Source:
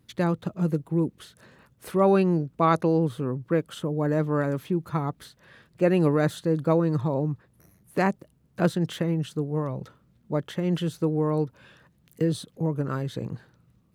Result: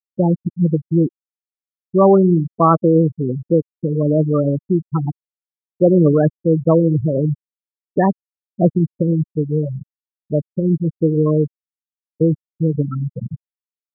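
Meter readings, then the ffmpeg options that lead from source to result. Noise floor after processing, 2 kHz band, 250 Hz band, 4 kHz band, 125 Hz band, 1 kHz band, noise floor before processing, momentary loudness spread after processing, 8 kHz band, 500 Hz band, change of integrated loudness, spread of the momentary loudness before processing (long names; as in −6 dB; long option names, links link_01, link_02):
below −85 dBFS, −4.5 dB, +9.0 dB, below −40 dB, +9.0 dB, +6.5 dB, −63 dBFS, 11 LU, below −30 dB, +8.5 dB, +8.5 dB, 11 LU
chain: -filter_complex "[0:a]acontrast=64,asplit=2[link_01][link_02];[link_02]adelay=105,volume=-17dB,highshelf=frequency=4000:gain=-2.36[link_03];[link_01][link_03]amix=inputs=2:normalize=0,afftfilt=real='re*gte(hypot(re,im),0.398)':imag='im*gte(hypot(re,im),0.398)':win_size=1024:overlap=0.75,volume=3dB"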